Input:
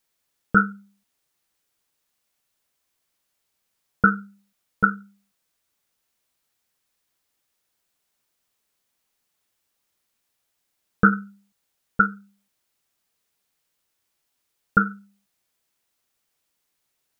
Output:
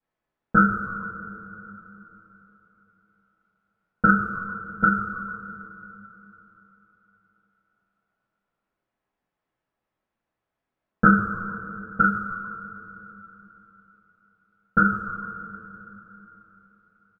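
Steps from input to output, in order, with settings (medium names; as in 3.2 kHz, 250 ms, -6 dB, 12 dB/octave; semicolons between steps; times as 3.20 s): frequency-shifting echo 147 ms, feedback 33%, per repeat -98 Hz, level -16 dB; level-controlled noise filter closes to 1.4 kHz, open at -19 dBFS; two-slope reverb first 0.31 s, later 3.7 s, from -18 dB, DRR -9.5 dB; trim -7.5 dB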